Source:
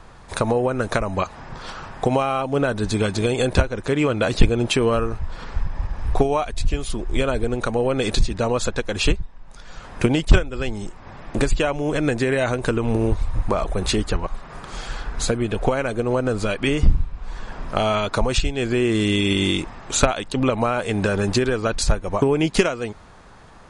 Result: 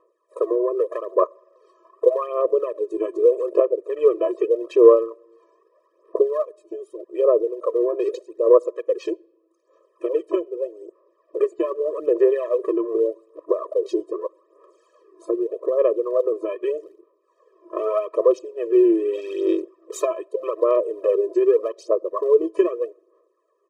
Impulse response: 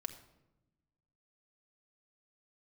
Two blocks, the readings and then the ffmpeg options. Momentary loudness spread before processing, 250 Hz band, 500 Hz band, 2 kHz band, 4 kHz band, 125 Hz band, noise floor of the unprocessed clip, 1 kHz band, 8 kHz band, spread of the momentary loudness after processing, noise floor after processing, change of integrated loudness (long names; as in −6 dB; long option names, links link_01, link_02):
13 LU, −4.0 dB, +4.5 dB, below −15 dB, below −20 dB, below −40 dB, −42 dBFS, −6.0 dB, below −15 dB, 13 LU, −66 dBFS, +1.0 dB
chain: -filter_complex "[0:a]afwtdn=0.0398,equalizer=frequency=125:width_type=o:width=1:gain=9,equalizer=frequency=250:width_type=o:width=1:gain=10,equalizer=frequency=500:width_type=o:width=1:gain=9,equalizer=frequency=1000:width_type=o:width=1:gain=6,equalizer=frequency=2000:width_type=o:width=1:gain=-7,equalizer=frequency=4000:width_type=o:width=1:gain=-9,aphaser=in_gain=1:out_gain=1:delay=3:decay=0.66:speed=0.82:type=sinusoidal,lowshelf=frequency=140:gain=-8.5,aresample=32000,aresample=44100,asplit=2[link_01][link_02];[1:a]atrim=start_sample=2205[link_03];[link_02][link_03]afir=irnorm=-1:irlink=0,volume=-15.5dB[link_04];[link_01][link_04]amix=inputs=2:normalize=0,afftfilt=real='re*eq(mod(floor(b*sr/1024/330),2),1)':imag='im*eq(mod(floor(b*sr/1024/330),2),1)':win_size=1024:overlap=0.75,volume=-10.5dB"